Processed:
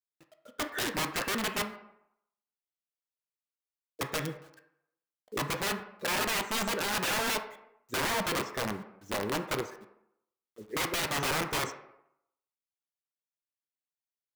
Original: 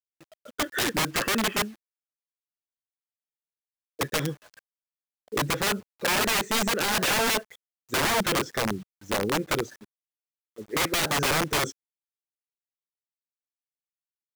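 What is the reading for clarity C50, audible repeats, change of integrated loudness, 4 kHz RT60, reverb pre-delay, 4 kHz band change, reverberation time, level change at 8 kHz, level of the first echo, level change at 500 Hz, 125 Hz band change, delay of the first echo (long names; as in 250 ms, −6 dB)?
9.5 dB, no echo audible, −6.0 dB, 0.50 s, 6 ms, −6.0 dB, 0.80 s, −6.5 dB, no echo audible, −5.5 dB, −6.5 dB, no echo audible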